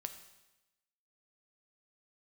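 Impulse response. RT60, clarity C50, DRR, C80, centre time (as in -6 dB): 1.0 s, 10.0 dB, 7.0 dB, 12.0 dB, 13 ms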